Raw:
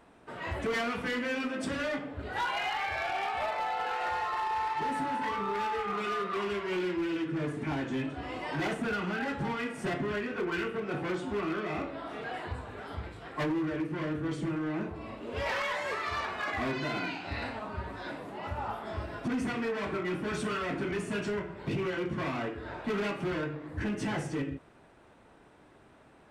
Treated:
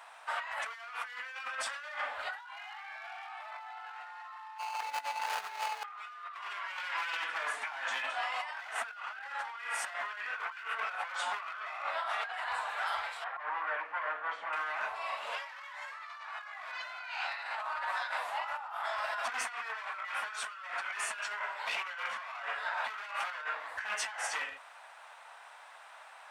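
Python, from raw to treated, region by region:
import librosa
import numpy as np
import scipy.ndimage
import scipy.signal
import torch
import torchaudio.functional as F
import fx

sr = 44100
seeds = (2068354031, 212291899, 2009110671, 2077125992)

y = fx.chain(x, sr, fx.median_filter(points=41),
    fx.over_compress(threshold_db=-40.0, ratio=-0.5), at=(4.58, 5.84))
y = fx.chain(y, sr, fx.lowpass(hz=1600.0, slope=12),
    fx.low_shelf(hz=260.0, db=-7.0), at=(13.24, 14.53))
y = scipy.signal.sosfilt(scipy.signal.cheby2(4, 40, 380.0, 'highpass', fs=sr, output='sos'), y)
y = fx.dynamic_eq(y, sr, hz=1400.0, q=1.2, threshold_db=-46.0, ratio=4.0, max_db=5)
y = fx.over_compress(y, sr, threshold_db=-44.0, ratio=-1.0)
y = y * librosa.db_to_amplitude(4.0)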